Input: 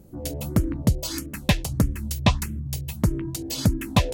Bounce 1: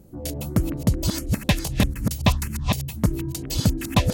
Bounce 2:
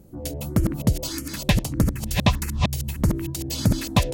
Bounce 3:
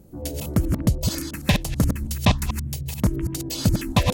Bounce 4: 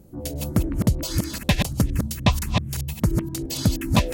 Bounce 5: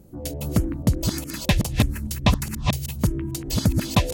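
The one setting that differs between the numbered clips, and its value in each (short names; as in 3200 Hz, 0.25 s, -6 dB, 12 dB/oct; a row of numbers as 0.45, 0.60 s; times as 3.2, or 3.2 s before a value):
reverse delay, time: 0.277, 0.615, 0.109, 0.173, 0.414 s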